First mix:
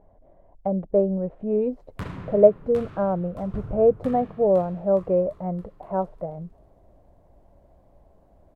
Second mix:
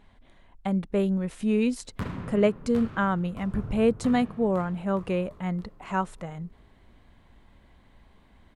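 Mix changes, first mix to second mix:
speech: remove synth low-pass 620 Hz, resonance Q 3.9; master: add bell 230 Hz +9.5 dB 0.21 oct

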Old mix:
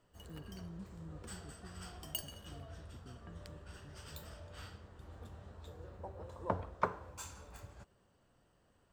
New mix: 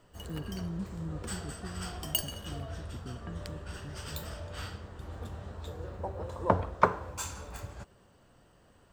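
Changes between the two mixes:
speech +11.5 dB; background +10.0 dB

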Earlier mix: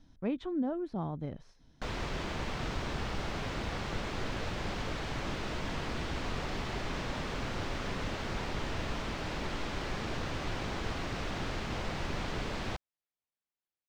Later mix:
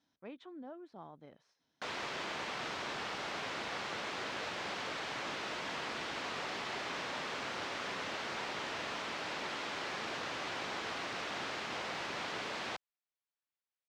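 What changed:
speech -9.0 dB; master: add weighting filter A

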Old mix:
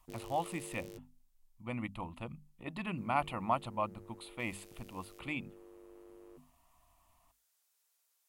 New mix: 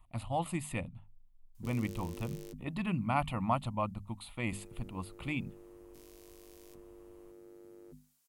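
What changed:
background: entry +1.55 s; master: add tone controls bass +9 dB, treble +3 dB

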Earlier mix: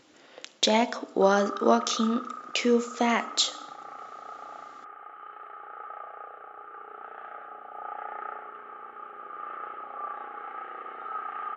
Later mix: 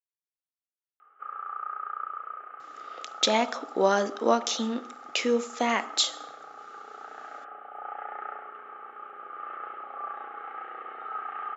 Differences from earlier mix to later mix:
speech: entry +2.60 s; master: add low shelf 210 Hz -9 dB

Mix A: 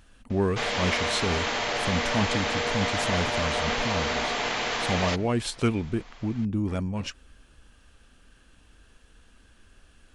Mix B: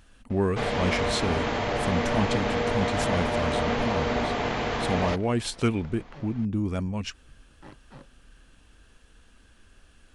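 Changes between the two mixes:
first sound: add tilt -3.5 dB/oct; second sound: entry +0.95 s

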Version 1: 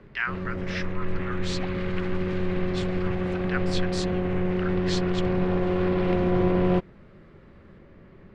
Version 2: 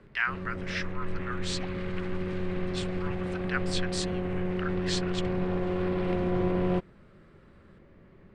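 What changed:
background -5.0 dB; master: add bell 8600 Hz +9 dB 0.32 oct

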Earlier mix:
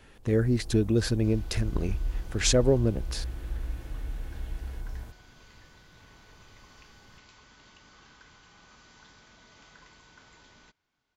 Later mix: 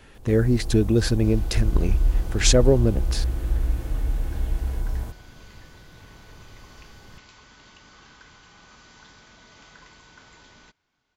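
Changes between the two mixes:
speech +4.5 dB; first sound +10.5 dB; second sound +5.0 dB

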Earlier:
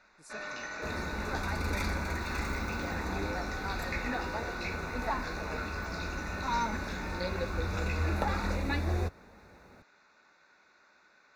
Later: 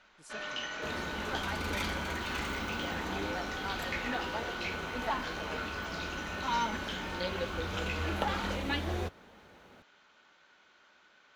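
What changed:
second sound: add low shelf 98 Hz -10 dB; master: remove Butterworth band-stop 3100 Hz, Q 3.1

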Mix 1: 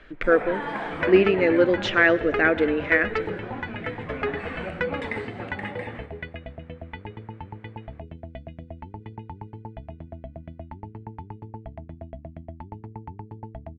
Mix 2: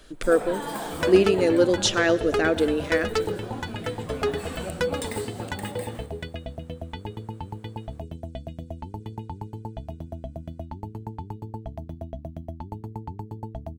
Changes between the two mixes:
second sound +3.5 dB; master: remove synth low-pass 2100 Hz, resonance Q 3

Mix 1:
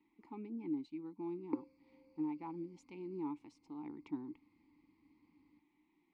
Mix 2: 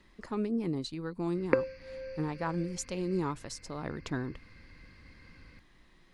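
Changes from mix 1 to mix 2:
background: add band shelf 2200 Hz +14 dB 1.3 oct; master: remove vowel filter u

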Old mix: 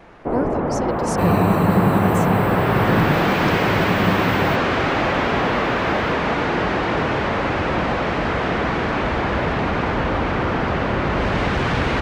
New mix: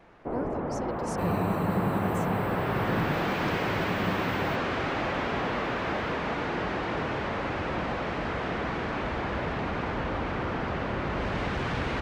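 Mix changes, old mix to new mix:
speech -11.5 dB; first sound -10.0 dB; second sound -11.5 dB

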